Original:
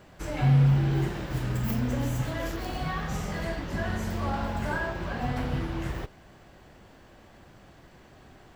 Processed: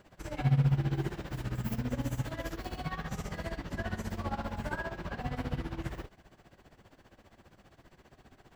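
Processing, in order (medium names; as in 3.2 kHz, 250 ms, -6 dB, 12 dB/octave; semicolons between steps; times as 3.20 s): tremolo 15 Hz, depth 82%; trim -2.5 dB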